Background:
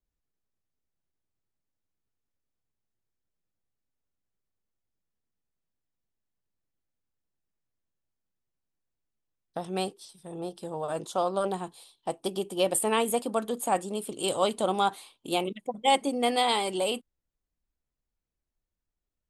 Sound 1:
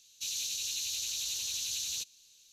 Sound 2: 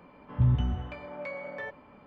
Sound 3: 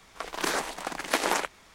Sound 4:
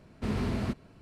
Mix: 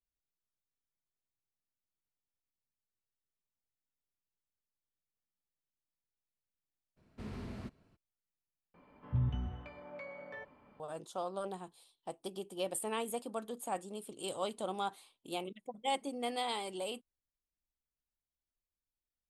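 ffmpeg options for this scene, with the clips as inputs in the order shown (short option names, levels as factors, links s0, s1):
-filter_complex "[0:a]volume=0.266,asplit=2[s0][s1];[s0]atrim=end=8.744[s2];[2:a]atrim=end=2.06,asetpts=PTS-STARTPTS,volume=0.355[s3];[s1]atrim=start=10.796[s4];[4:a]atrim=end=1.01,asetpts=PTS-STARTPTS,volume=0.211,afade=t=in:d=0.02,afade=t=out:st=0.99:d=0.02,adelay=6960[s5];[s2][s3]acrossfade=d=0.004:c1=hsin:c2=hsin[s6];[s6][s4]acrossfade=d=0.004:c1=hsin:c2=hsin[s7];[s7][s5]amix=inputs=2:normalize=0"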